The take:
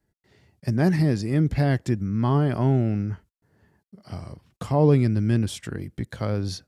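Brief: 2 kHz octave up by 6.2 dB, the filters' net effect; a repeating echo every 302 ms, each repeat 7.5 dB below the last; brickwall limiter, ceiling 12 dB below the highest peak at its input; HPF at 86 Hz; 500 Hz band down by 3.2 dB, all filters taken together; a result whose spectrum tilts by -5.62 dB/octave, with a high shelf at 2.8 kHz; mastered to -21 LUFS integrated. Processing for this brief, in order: high-pass 86 Hz; peaking EQ 500 Hz -4.5 dB; peaking EQ 2 kHz +5.5 dB; treble shelf 2.8 kHz +6.5 dB; peak limiter -20.5 dBFS; feedback delay 302 ms, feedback 42%, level -7.5 dB; trim +9 dB

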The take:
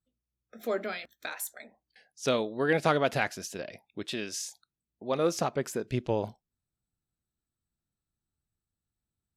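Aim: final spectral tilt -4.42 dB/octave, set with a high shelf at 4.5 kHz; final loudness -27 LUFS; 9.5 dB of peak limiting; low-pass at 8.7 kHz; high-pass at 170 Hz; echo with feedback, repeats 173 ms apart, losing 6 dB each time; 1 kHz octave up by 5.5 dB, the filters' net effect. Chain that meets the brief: high-pass 170 Hz; low-pass 8.7 kHz; peaking EQ 1 kHz +8 dB; treble shelf 4.5 kHz -6.5 dB; peak limiter -16 dBFS; feedback delay 173 ms, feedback 50%, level -6 dB; trim +4.5 dB

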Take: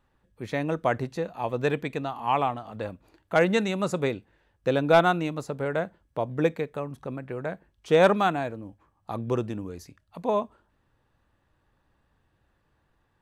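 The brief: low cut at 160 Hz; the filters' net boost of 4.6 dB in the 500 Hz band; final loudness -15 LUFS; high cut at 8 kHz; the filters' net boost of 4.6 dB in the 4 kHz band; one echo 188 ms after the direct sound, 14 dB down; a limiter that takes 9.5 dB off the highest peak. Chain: high-pass 160 Hz; low-pass 8 kHz; peaking EQ 500 Hz +5.5 dB; peaking EQ 4 kHz +5.5 dB; peak limiter -13.5 dBFS; delay 188 ms -14 dB; trim +12 dB

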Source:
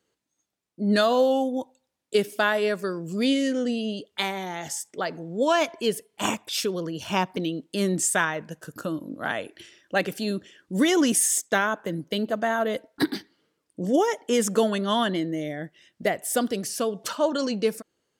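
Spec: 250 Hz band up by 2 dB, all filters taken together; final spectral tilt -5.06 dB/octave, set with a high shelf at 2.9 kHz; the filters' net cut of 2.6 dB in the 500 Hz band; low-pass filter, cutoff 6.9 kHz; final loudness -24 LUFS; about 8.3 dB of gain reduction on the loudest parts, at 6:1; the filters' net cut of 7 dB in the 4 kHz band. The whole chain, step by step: low-pass 6.9 kHz; peaking EQ 250 Hz +3.5 dB; peaking EQ 500 Hz -4 dB; treble shelf 2.9 kHz -4 dB; peaking EQ 4 kHz -6 dB; compression 6:1, threshold -25 dBFS; trim +7 dB

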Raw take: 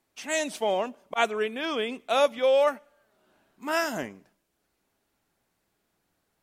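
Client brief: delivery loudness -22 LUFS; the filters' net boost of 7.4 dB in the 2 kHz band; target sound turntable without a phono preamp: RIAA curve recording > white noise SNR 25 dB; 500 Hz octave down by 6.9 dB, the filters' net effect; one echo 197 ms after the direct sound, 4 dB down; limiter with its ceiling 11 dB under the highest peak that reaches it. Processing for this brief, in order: peaking EQ 500 Hz -6 dB; peaking EQ 2 kHz +6.5 dB; peak limiter -17 dBFS; RIAA curve recording; delay 197 ms -4 dB; white noise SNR 25 dB; trim +4 dB

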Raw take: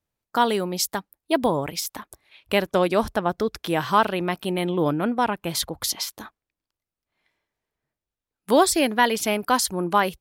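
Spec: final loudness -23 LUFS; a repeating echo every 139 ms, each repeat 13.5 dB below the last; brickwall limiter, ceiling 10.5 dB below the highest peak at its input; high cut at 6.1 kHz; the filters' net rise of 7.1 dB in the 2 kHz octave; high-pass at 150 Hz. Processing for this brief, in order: high-pass 150 Hz; low-pass 6.1 kHz; peaking EQ 2 kHz +9 dB; peak limiter -11 dBFS; feedback delay 139 ms, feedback 21%, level -13.5 dB; trim +2 dB

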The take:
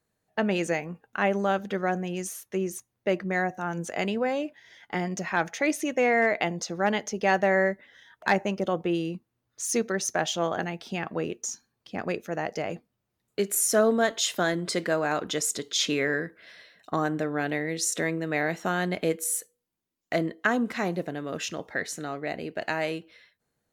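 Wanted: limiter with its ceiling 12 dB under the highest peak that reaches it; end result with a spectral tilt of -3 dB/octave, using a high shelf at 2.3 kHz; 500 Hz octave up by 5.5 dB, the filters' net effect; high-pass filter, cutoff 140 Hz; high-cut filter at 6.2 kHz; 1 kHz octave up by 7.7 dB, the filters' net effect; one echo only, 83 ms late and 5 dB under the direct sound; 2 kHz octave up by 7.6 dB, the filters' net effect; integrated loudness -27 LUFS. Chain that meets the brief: high-pass 140 Hz; low-pass 6.2 kHz; peaking EQ 500 Hz +4 dB; peaking EQ 1 kHz +7.5 dB; peaking EQ 2 kHz +4 dB; treble shelf 2.3 kHz +5.5 dB; peak limiter -12 dBFS; delay 83 ms -5 dB; trim -3 dB

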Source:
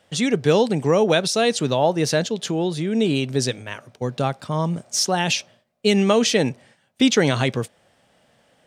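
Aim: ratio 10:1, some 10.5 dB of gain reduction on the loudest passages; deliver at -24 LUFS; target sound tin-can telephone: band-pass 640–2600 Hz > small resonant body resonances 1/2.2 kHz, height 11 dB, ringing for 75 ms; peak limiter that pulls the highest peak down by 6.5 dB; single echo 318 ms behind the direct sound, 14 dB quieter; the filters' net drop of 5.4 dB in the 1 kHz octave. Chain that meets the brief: peaking EQ 1 kHz -5.5 dB; compression 10:1, threshold -24 dBFS; peak limiter -20.5 dBFS; band-pass 640–2600 Hz; delay 318 ms -14 dB; small resonant body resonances 1/2.2 kHz, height 11 dB, ringing for 75 ms; trim +14.5 dB

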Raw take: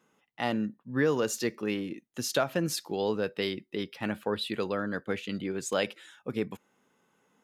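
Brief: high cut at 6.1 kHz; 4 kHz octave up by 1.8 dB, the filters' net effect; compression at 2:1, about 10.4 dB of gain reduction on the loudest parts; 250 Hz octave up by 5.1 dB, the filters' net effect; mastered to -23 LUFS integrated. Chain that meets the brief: low-pass 6.1 kHz; peaking EQ 250 Hz +6.5 dB; peaking EQ 4 kHz +3 dB; compression 2:1, threshold -38 dBFS; trim +14 dB

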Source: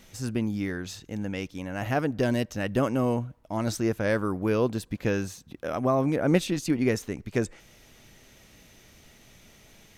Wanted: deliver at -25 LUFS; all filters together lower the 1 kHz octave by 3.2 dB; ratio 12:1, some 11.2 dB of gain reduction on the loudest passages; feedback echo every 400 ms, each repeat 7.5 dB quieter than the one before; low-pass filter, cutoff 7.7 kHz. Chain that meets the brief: low-pass 7.7 kHz; peaking EQ 1 kHz -4.5 dB; compression 12:1, threshold -28 dBFS; feedback delay 400 ms, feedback 42%, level -7.5 dB; trim +9 dB

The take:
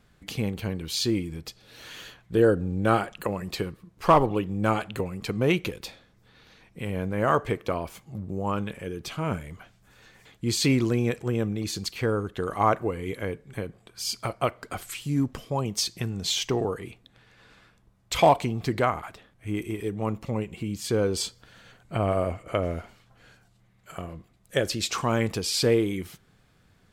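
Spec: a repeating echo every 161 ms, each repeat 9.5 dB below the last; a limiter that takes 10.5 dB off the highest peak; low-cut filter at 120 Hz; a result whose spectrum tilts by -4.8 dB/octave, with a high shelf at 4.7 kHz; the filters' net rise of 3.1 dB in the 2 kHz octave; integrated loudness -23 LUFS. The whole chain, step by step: high-pass 120 Hz; peaking EQ 2 kHz +5 dB; treble shelf 4.7 kHz -5.5 dB; peak limiter -15 dBFS; feedback delay 161 ms, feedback 33%, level -9.5 dB; trim +6.5 dB

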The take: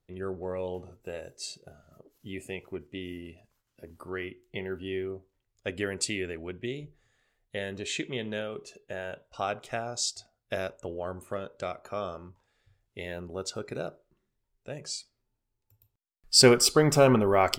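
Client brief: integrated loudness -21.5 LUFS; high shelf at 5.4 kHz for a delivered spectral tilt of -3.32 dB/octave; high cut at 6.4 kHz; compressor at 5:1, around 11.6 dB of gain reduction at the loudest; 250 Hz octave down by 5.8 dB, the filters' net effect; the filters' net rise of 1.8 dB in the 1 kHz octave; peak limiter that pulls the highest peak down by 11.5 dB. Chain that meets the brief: low-pass 6.4 kHz; peaking EQ 250 Hz -8.5 dB; peaking EQ 1 kHz +3 dB; treble shelf 5.4 kHz +3.5 dB; compression 5:1, threshold -28 dBFS; trim +16.5 dB; peak limiter -7 dBFS

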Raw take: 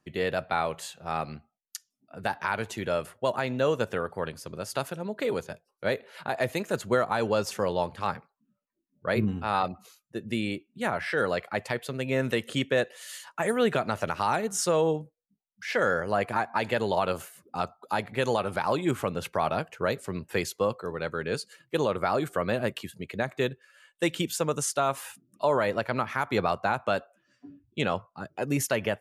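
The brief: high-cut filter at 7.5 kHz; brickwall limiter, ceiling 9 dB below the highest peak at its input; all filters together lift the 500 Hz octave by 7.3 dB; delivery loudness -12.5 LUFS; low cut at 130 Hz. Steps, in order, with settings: high-pass 130 Hz; low-pass 7.5 kHz; peaking EQ 500 Hz +8.5 dB; trim +14.5 dB; peak limiter -0.5 dBFS

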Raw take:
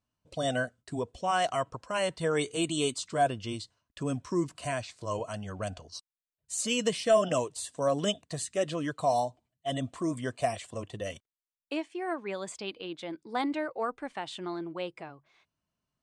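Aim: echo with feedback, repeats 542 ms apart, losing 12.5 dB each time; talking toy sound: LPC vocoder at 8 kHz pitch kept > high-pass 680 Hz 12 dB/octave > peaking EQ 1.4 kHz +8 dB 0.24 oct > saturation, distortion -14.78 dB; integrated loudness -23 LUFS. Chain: feedback delay 542 ms, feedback 24%, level -12.5 dB; LPC vocoder at 8 kHz pitch kept; high-pass 680 Hz 12 dB/octave; peaking EQ 1.4 kHz +8 dB 0.24 oct; saturation -23.5 dBFS; trim +14.5 dB

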